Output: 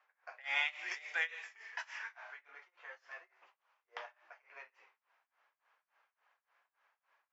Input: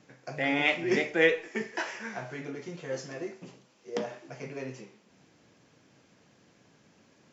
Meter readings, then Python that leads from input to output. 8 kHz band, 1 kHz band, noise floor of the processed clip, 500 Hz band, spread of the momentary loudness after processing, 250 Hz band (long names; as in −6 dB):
can't be measured, −10.5 dB, below −85 dBFS, −27.0 dB, 21 LU, below −40 dB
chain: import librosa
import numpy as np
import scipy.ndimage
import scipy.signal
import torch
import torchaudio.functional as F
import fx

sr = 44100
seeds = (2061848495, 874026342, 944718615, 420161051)

y = scipy.signal.sosfilt(scipy.signal.butter(4, 940.0, 'highpass', fs=sr, output='sos'), x)
y = fx.env_lowpass(y, sr, base_hz=1400.0, full_db=-28.5)
y = y * (1.0 - 0.95 / 2.0 + 0.95 / 2.0 * np.cos(2.0 * np.pi * 3.5 * (np.arange(len(y)) / sr)))